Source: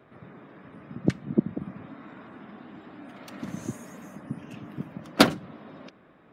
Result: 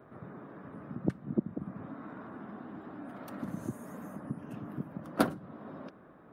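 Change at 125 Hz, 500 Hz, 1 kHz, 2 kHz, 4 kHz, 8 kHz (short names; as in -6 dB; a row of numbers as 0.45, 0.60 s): -5.5, -7.0, -7.5, -11.5, -19.5, -13.0 dB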